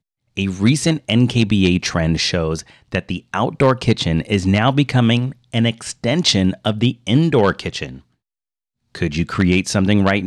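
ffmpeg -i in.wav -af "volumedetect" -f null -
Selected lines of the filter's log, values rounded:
mean_volume: -17.7 dB
max_volume: -3.1 dB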